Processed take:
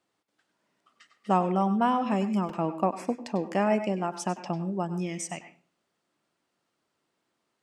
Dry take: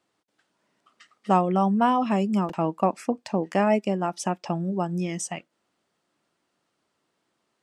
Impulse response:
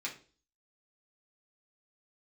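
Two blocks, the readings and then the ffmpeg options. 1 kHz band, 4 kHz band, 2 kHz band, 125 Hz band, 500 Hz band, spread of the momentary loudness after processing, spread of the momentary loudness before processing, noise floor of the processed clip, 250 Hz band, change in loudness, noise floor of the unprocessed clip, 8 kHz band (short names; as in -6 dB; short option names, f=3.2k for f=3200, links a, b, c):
-3.5 dB, -3.0 dB, -3.0 dB, -3.5 dB, -3.5 dB, 9 LU, 9 LU, -80 dBFS, -3.5 dB, -3.5 dB, -76 dBFS, -3.5 dB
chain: -filter_complex "[0:a]asplit=2[a][b];[1:a]atrim=start_sample=2205,adelay=95[c];[b][c]afir=irnorm=-1:irlink=0,volume=-11.5dB[d];[a][d]amix=inputs=2:normalize=0,volume=-3.5dB"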